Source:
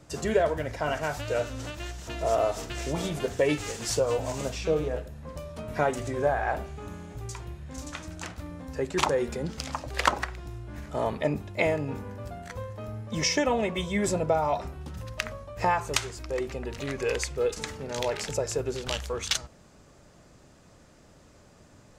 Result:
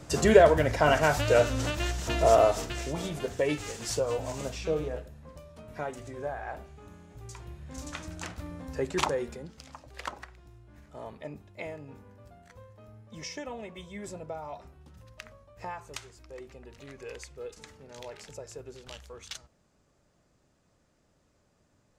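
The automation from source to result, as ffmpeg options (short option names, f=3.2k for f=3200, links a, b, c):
-af "volume=15.5dB,afade=t=out:st=2.16:d=0.75:silence=0.316228,afade=t=out:st=4.82:d=0.61:silence=0.473151,afade=t=in:st=7.08:d=0.87:silence=0.354813,afade=t=out:st=8.89:d=0.62:silence=0.223872"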